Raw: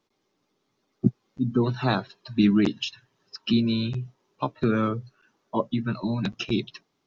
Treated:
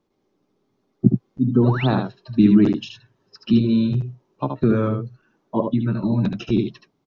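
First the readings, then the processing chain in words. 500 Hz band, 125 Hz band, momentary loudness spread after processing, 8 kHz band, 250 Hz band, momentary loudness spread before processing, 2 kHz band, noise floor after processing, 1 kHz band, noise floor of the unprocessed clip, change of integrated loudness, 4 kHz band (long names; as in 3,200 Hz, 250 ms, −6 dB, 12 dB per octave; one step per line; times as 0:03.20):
+5.5 dB, +7.5 dB, 13 LU, can't be measured, +6.5 dB, 11 LU, −0.5 dB, −71 dBFS, +1.5 dB, −75 dBFS, +6.0 dB, −3.5 dB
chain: tilt shelving filter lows +6.5 dB
single-tap delay 75 ms −5.5 dB
sound drawn into the spectrogram rise, 0:01.63–0:01.87, 420–3,900 Hz −30 dBFS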